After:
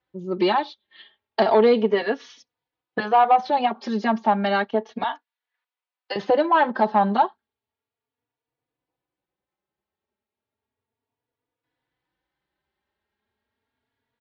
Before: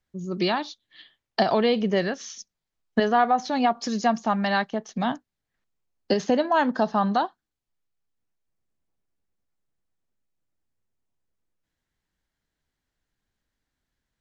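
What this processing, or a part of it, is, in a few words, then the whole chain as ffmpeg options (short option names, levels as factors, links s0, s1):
barber-pole flanger into a guitar amplifier: -filter_complex "[0:a]asettb=1/sr,asplit=3[s0][s1][s2];[s0]atrim=end=5.034[s3];[s1]atrim=start=5.03:end=6.16,asetpts=PTS-STARTPTS,afade=t=in:d=0.004:c=qsin,afade=t=out:st=1.126:d=0.004:c=qsin,highpass=1100[s4];[s2]atrim=start=6.156[s5];[s3][s4]acrossfade=d=0.004:c1=hsin:c2=qsin[s6];[s6][s5]acrossfade=d=0.004:c1=qsin:c2=hsin,asplit=2[s7][s8];[s8]adelay=3.5,afreqshift=0.33[s9];[s7][s9]amix=inputs=2:normalize=1,asoftclip=type=tanh:threshold=0.15,highpass=99,equalizer=f=170:t=q:w=4:g=-9,equalizer=f=440:t=q:w=4:g=6,equalizer=f=890:t=q:w=4:g=7,lowpass=f=3900:w=0.5412,lowpass=f=3900:w=1.3066,volume=1.88"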